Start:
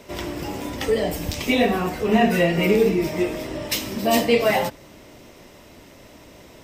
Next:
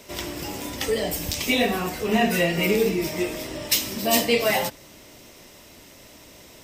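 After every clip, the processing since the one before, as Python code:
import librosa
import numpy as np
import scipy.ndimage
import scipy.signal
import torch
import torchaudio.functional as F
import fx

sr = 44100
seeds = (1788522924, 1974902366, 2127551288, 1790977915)

y = fx.high_shelf(x, sr, hz=2900.0, db=10.5)
y = y * librosa.db_to_amplitude(-4.0)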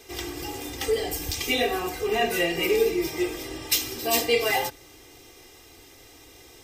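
y = x + 0.98 * np.pad(x, (int(2.5 * sr / 1000.0), 0))[:len(x)]
y = y * librosa.db_to_amplitude(-5.0)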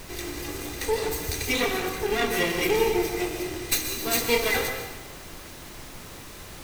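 y = fx.lower_of_two(x, sr, delay_ms=0.48)
y = fx.dmg_noise_colour(y, sr, seeds[0], colour='pink', level_db=-43.0)
y = fx.rev_plate(y, sr, seeds[1], rt60_s=1.1, hf_ratio=0.85, predelay_ms=110, drr_db=6.0)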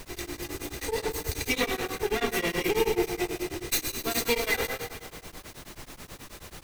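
y = fx.echo_feedback(x, sr, ms=166, feedback_pct=60, wet_db=-16)
y = y * np.abs(np.cos(np.pi * 9.3 * np.arange(len(y)) / sr))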